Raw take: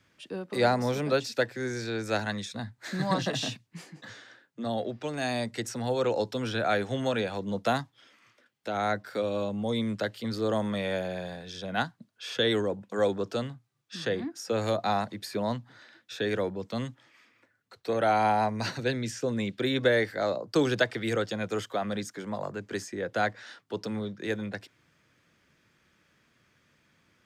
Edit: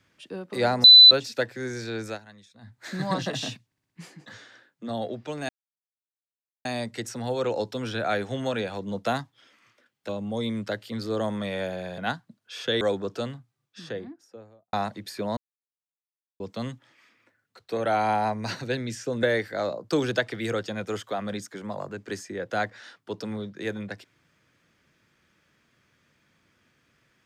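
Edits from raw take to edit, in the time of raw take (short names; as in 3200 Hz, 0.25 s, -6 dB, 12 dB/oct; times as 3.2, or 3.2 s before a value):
0.84–1.11 bleep 4000 Hz -7 dBFS
2.06–2.74 dip -17.5 dB, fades 0.13 s
3.66 stutter 0.06 s, 5 plays
5.25 insert silence 1.16 s
8.69–9.41 cut
11.3–11.69 cut
12.52–12.97 cut
13.52–14.89 studio fade out
15.53–16.56 mute
19.39–19.86 cut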